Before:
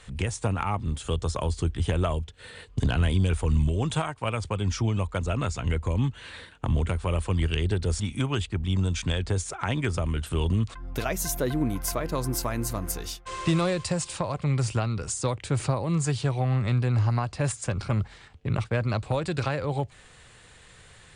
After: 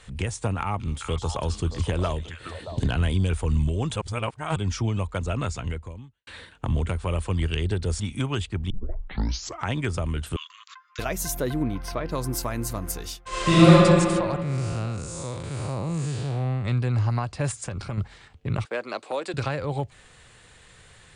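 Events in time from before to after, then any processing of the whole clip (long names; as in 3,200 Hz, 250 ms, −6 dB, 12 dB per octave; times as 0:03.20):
0:00.59–0:02.88: echo through a band-pass that steps 209 ms, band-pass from 4,800 Hz, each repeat −1.4 octaves, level −1 dB
0:03.96–0:04.56: reverse
0:05.56–0:06.27: fade out quadratic
0:08.70: tape start 0.97 s
0:10.36–0:10.99: linear-phase brick-wall band-pass 990–7,500 Hz
0:11.63–0:12.11: Savitzky-Golay smoothing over 15 samples
0:13.28–0:13.71: thrown reverb, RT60 2.3 s, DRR −11.5 dB
0:14.42–0:16.65: spectrum smeared in time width 213 ms
0:17.50–0:17.98: downward compressor, threshold −27 dBFS
0:18.65–0:19.34: high-pass filter 300 Hz 24 dB per octave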